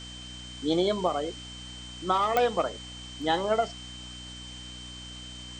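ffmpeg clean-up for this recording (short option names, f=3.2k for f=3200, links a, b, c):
-af "adeclick=t=4,bandreject=f=61.4:t=h:w=4,bandreject=f=122.8:t=h:w=4,bandreject=f=184.2:t=h:w=4,bandreject=f=245.6:t=h:w=4,bandreject=f=307:t=h:w=4,bandreject=f=3.1k:w=30,afwtdn=0.005"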